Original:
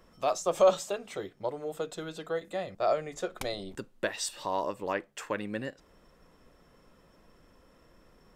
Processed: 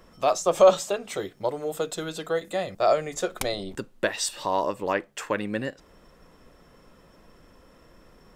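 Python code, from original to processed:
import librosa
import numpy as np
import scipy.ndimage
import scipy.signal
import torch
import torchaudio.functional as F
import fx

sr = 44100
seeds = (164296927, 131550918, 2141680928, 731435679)

y = fx.high_shelf(x, sr, hz=5200.0, db=7.5, at=(1.09, 3.42))
y = y * 10.0 ** (6.0 / 20.0)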